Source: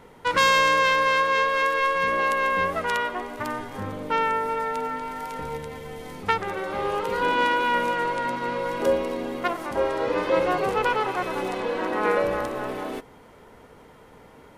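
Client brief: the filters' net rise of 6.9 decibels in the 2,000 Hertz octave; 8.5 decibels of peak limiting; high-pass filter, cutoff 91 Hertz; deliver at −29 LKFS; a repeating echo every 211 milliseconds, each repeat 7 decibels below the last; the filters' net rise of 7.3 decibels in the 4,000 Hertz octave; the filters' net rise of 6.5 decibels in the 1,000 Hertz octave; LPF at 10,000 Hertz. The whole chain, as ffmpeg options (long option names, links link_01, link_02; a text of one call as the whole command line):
ffmpeg -i in.wav -af "highpass=91,lowpass=10000,equalizer=frequency=1000:width_type=o:gain=5.5,equalizer=frequency=2000:width_type=o:gain=5.5,equalizer=frequency=4000:width_type=o:gain=7,alimiter=limit=-7.5dB:level=0:latency=1,aecho=1:1:211|422|633|844|1055:0.447|0.201|0.0905|0.0407|0.0183,volume=-10dB" out.wav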